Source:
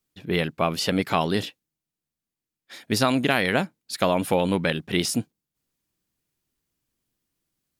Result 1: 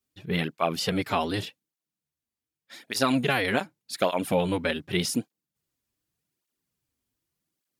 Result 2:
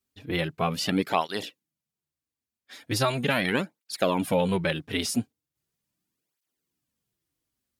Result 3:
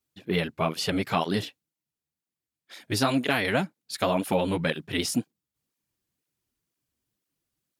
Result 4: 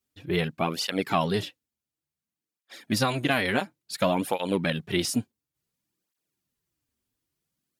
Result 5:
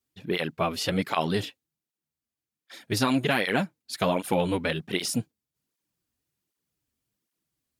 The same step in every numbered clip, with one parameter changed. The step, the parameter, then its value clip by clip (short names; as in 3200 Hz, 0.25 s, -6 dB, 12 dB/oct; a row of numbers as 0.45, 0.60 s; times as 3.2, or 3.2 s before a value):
tape flanging out of phase, nulls at: 0.85, 0.39, 2, 0.57, 1.3 Hz